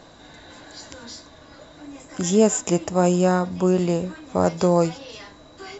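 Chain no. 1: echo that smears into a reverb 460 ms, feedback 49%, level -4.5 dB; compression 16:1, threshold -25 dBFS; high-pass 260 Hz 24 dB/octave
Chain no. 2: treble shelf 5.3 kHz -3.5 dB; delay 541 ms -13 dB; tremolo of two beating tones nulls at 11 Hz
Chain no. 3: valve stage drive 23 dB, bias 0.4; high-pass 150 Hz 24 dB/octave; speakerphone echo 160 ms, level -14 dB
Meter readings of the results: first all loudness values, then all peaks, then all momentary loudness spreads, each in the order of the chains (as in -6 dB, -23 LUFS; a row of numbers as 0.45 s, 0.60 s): -33.0 LUFS, -24.0 LUFS, -29.5 LUFS; -14.0 dBFS, -5.5 dBFS, -16.0 dBFS; 10 LU, 20 LU, 18 LU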